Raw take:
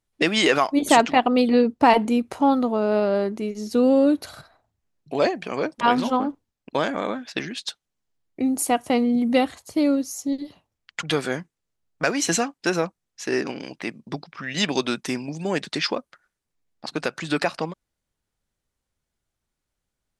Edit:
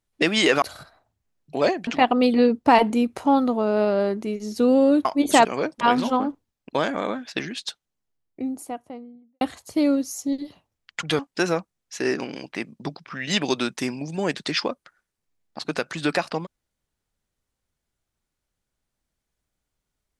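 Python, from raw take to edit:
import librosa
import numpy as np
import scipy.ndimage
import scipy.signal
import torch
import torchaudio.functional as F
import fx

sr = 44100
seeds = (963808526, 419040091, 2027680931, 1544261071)

y = fx.studio_fade_out(x, sr, start_s=7.54, length_s=1.87)
y = fx.edit(y, sr, fx.swap(start_s=0.62, length_s=0.4, other_s=4.2, other_length_s=1.25),
    fx.cut(start_s=11.19, length_s=1.27), tone=tone)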